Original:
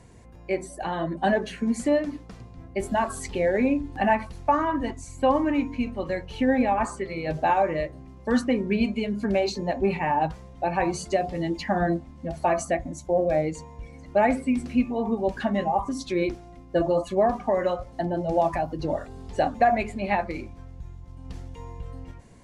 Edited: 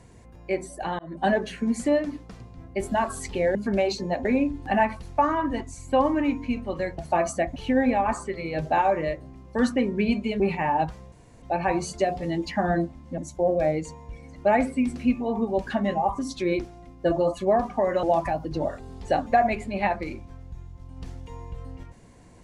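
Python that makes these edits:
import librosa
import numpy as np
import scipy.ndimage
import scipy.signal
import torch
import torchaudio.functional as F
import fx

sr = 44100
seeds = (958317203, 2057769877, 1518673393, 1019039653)

y = fx.edit(x, sr, fx.fade_in_span(start_s=0.99, length_s=0.25),
    fx.move(start_s=9.12, length_s=0.7, to_s=3.55),
    fx.insert_room_tone(at_s=10.54, length_s=0.3),
    fx.move(start_s=12.3, length_s=0.58, to_s=6.28),
    fx.cut(start_s=17.73, length_s=0.58), tone=tone)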